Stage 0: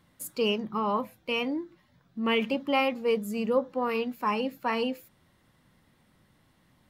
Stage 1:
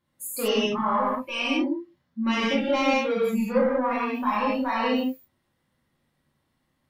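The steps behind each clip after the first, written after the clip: saturation -24 dBFS, distortion -13 dB; spectral noise reduction 16 dB; gated-style reverb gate 220 ms flat, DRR -7.5 dB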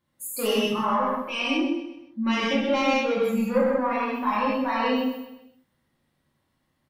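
feedback delay 128 ms, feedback 41%, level -11 dB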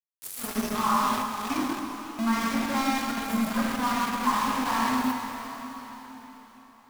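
static phaser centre 1.2 kHz, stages 4; small samples zeroed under -29.5 dBFS; plate-style reverb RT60 4.5 s, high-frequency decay 0.95×, DRR 3 dB; trim +1 dB

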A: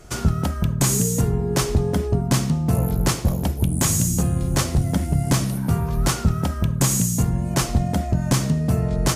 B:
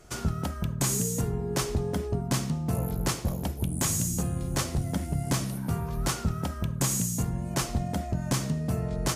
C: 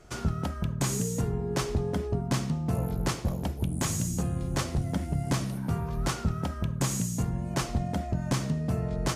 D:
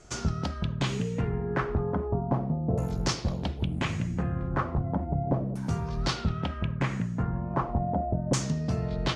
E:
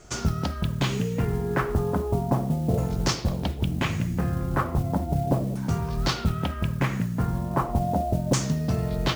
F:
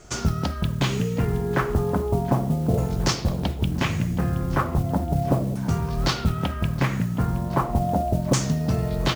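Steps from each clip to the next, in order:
bass shelf 200 Hz -3.5 dB; trim -6.5 dB
treble shelf 7.6 kHz -10.5 dB
LFO low-pass saw down 0.36 Hz 520–7500 Hz
modulation noise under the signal 26 dB; trim +3.5 dB
feedback delay 720 ms, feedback 46%, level -18 dB; trim +2 dB

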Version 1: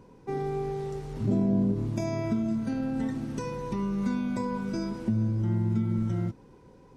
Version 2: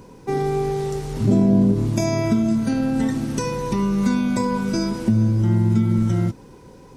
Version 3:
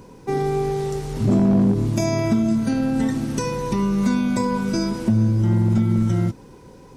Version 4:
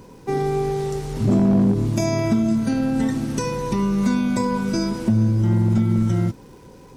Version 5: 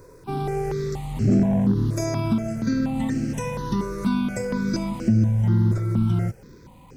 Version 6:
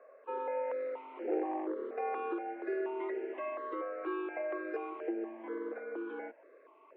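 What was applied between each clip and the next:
treble shelf 4.3 kHz +9.5 dB; trim +9 dB
overload inside the chain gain 11.5 dB
crackle 460 per s -47 dBFS
stepped phaser 4.2 Hz 820–3600 Hz
mistuned SSB +120 Hz 280–2400 Hz; trim -7.5 dB

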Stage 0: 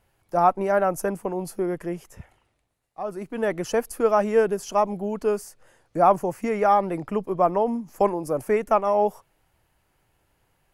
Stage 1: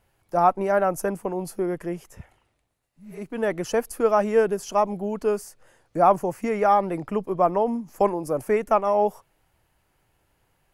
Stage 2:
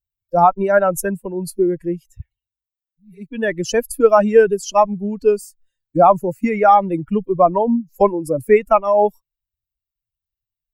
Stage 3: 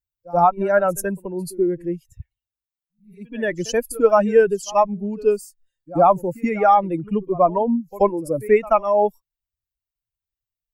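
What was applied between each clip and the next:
spectral replace 2.94–3.16 s, 280–9800 Hz both
expander on every frequency bin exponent 2; loudness maximiser +13 dB; trim -1 dB
pre-echo 82 ms -20 dB; trim -3 dB

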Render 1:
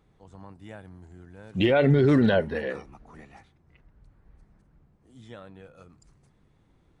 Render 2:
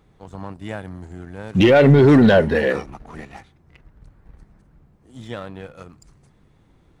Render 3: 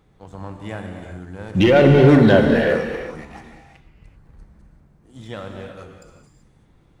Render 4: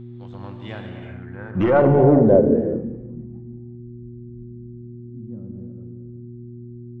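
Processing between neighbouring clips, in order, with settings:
waveshaping leveller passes 1; in parallel at -3 dB: peak limiter -21 dBFS, peak gain reduction 9.5 dB; on the sum: trim +4.5 dB
gated-style reverb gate 410 ms flat, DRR 3.5 dB; trim -1.5 dB
tracing distortion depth 0.11 ms; low-pass sweep 3.6 kHz -> 220 Hz, 0.85–3.02 s; mains buzz 120 Hz, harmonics 3, -33 dBFS -4 dB/octave; trim -4.5 dB

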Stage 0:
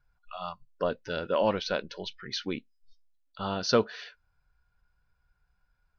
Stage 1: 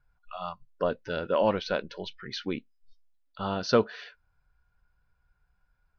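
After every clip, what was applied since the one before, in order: treble shelf 5.2 kHz -11.5 dB; trim +1.5 dB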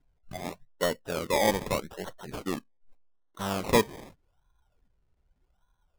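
decimation with a swept rate 25×, swing 60% 0.83 Hz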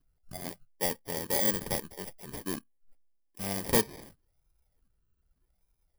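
bit-reversed sample order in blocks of 32 samples; trim -3 dB

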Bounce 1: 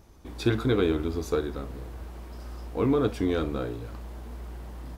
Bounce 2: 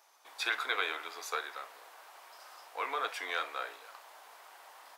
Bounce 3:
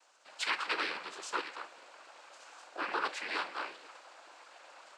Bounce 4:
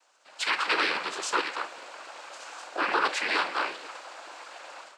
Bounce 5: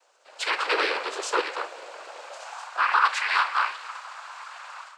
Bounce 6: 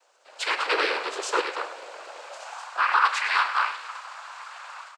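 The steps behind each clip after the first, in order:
dynamic bell 2 kHz, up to +7 dB, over -51 dBFS, Q 1.5; high-pass 740 Hz 24 dB/octave
noise-vocoded speech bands 8
level rider gain up to 11 dB; in parallel at 0 dB: peak limiter -19 dBFS, peak gain reduction 10 dB; on the sum: trim -6 dB
high-pass sweep 450 Hz -> 1.1 kHz, 2.20–2.75 s
delay 101 ms -13 dB

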